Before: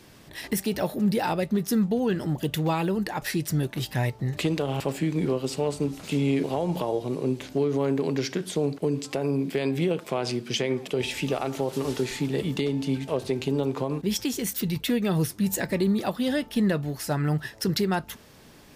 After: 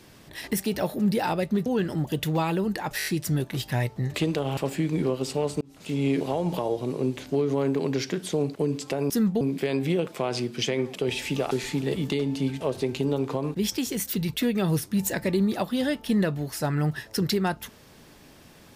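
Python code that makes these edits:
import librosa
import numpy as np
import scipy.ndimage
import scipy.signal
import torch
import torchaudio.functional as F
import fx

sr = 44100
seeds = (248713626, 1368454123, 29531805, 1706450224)

y = fx.edit(x, sr, fx.move(start_s=1.66, length_s=0.31, to_s=9.33),
    fx.stutter(start_s=3.29, slice_s=0.02, count=5),
    fx.fade_in_span(start_s=5.84, length_s=0.48),
    fx.cut(start_s=11.43, length_s=0.55), tone=tone)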